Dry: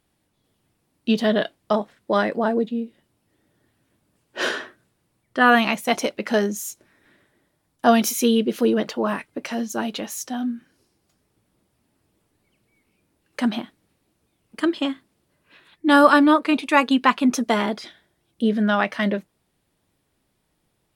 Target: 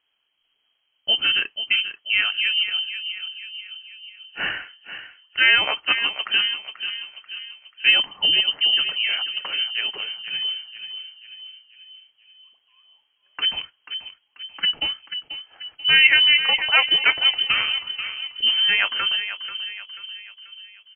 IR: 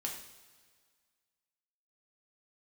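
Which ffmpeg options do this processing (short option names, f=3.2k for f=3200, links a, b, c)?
-filter_complex "[0:a]asettb=1/sr,asplit=3[a][b][c];[a]atrim=end=18.464[d];[b]atrim=start=18.46:end=18.88,asetpts=PTS-STARTPTS,afade=t=in:d=0.004:c=qsin,afade=t=out:st=0.416:d=0.004:c=qsin,aeval=exprs='val(0)+0.5*0.0447*sgn(val(0))':c=same[e];[c]atrim=start=18.876[f];[d][e]acrossfade=d=0.004:c1=hsin:c2=qsin[g];[g][f]acrossfade=d=0.004:c1=qsin:c2=hsin,asplit=2[h][i];[i]adelay=487,lowpass=f=1.9k:p=1,volume=-9dB,asplit=2[j][k];[k]adelay=487,lowpass=f=1.9k:p=1,volume=0.54,asplit=2[l][m];[m]adelay=487,lowpass=f=1.9k:p=1,volume=0.54,asplit=2[n][o];[o]adelay=487,lowpass=f=1.9k:p=1,volume=0.54,asplit=2[p][q];[q]adelay=487,lowpass=f=1.9k:p=1,volume=0.54,asplit=2[r][s];[s]adelay=487,lowpass=f=1.9k:p=1,volume=0.54[t];[h][j][l][n][p][r][t]amix=inputs=7:normalize=0,lowpass=f=2.8k:t=q:w=0.5098,lowpass=f=2.8k:t=q:w=0.6013,lowpass=f=2.8k:t=q:w=0.9,lowpass=f=2.8k:t=q:w=2.563,afreqshift=-3300,volume=-1dB"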